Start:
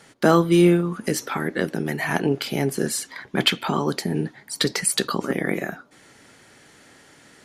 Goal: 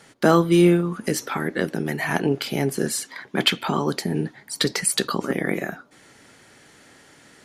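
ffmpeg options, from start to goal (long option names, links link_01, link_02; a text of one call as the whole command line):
ffmpeg -i in.wav -filter_complex "[0:a]asettb=1/sr,asplit=3[link_01][link_02][link_03];[link_01]atrim=end=3.054[link_04];[link_02]atrim=start=3.05:end=3.49,asetpts=PTS-STARTPTS,afade=type=in:duration=0.004:curve=qsin,afade=type=out:start_time=0.436:duration=0.004:curve=qsin,highpass=150[link_05];[link_03]atrim=start=3.486[link_06];[link_04][link_05]acrossfade=duration=0.004:curve1=hsin:curve2=qsin[link_07];[link_07][link_06]acrossfade=duration=0.004:curve1=qsin:curve2=hsin" out.wav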